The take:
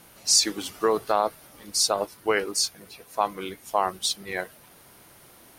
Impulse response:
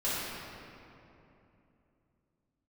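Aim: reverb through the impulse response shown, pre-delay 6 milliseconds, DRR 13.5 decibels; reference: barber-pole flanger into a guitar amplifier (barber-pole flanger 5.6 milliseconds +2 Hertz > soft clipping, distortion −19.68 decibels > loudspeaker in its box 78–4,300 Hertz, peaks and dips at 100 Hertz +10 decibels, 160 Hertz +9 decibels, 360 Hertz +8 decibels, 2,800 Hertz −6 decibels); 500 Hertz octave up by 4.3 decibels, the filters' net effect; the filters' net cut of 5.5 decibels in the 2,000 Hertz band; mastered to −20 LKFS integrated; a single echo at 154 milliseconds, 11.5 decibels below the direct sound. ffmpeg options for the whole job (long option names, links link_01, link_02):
-filter_complex "[0:a]equalizer=frequency=500:width_type=o:gain=3,equalizer=frequency=2000:width_type=o:gain=-6.5,aecho=1:1:154:0.266,asplit=2[link_01][link_02];[1:a]atrim=start_sample=2205,adelay=6[link_03];[link_02][link_03]afir=irnorm=-1:irlink=0,volume=-22.5dB[link_04];[link_01][link_04]amix=inputs=2:normalize=0,asplit=2[link_05][link_06];[link_06]adelay=5.6,afreqshift=2[link_07];[link_05][link_07]amix=inputs=2:normalize=1,asoftclip=threshold=-15dB,highpass=78,equalizer=frequency=100:width_type=q:width=4:gain=10,equalizer=frequency=160:width_type=q:width=4:gain=9,equalizer=frequency=360:width_type=q:width=4:gain=8,equalizer=frequency=2800:width_type=q:width=4:gain=-6,lowpass=frequency=4300:width=0.5412,lowpass=frequency=4300:width=1.3066,volume=9.5dB"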